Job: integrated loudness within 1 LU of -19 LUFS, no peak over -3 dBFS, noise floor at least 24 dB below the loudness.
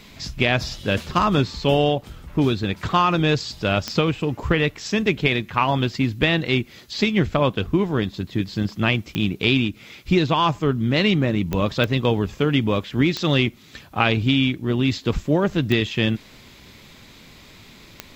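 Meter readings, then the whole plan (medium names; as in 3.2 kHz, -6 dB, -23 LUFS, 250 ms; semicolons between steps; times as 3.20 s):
clicks found 7; loudness -21.5 LUFS; peak level -4.5 dBFS; loudness target -19.0 LUFS
-> de-click; trim +2.5 dB; peak limiter -3 dBFS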